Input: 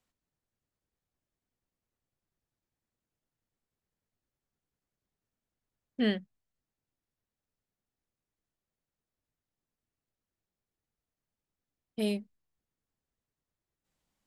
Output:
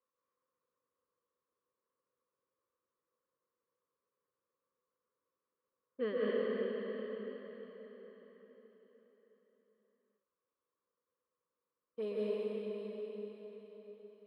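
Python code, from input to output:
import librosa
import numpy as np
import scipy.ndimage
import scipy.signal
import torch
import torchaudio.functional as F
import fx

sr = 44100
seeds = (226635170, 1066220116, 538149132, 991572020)

y = fx.double_bandpass(x, sr, hz=740.0, octaves=1.1)
y = fx.rev_plate(y, sr, seeds[0], rt60_s=4.8, hf_ratio=0.9, predelay_ms=115, drr_db=-8.0)
y = y * 10.0 ** (4.0 / 20.0)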